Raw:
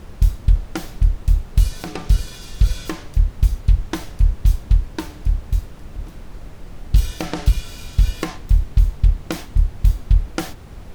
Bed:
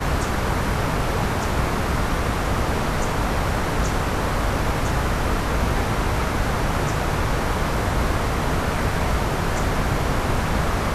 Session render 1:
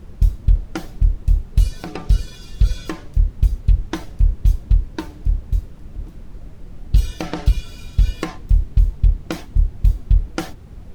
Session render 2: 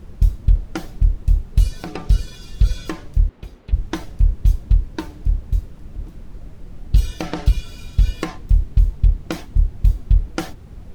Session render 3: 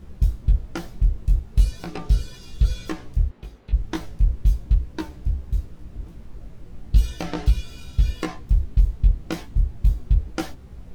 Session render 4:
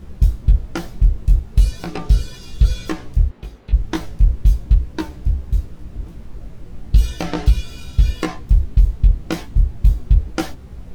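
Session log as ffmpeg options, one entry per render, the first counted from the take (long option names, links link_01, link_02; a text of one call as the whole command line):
ffmpeg -i in.wav -af "afftdn=noise_reduction=8:noise_floor=-38" out.wav
ffmpeg -i in.wav -filter_complex "[0:a]asettb=1/sr,asplit=3[link_01][link_02][link_03];[link_01]atrim=end=3.294[link_04];[link_02]atrim=start=3.29:end=3.73,asetpts=PTS-STARTPTS,afade=type=in:duration=0.004:curve=qsin,afade=type=out:start_time=0.436:duration=0.004:curve=qsin,acrossover=split=230 4100:gain=0.0891 1 0.224[link_05][link_06][link_07];[link_05][link_06][link_07]amix=inputs=3:normalize=0[link_08];[link_03]atrim=start=3.726[link_09];[link_04][link_08]acrossfade=duration=0.004:curve1=hsin:curve2=qsin[link_10];[link_10][link_09]acrossfade=duration=0.004:curve1=qsin:curve2=hsin" out.wav
ffmpeg -i in.wav -af "flanger=delay=15.5:depth=3.1:speed=0.38" out.wav
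ffmpeg -i in.wav -af "volume=5.5dB,alimiter=limit=-3dB:level=0:latency=1" out.wav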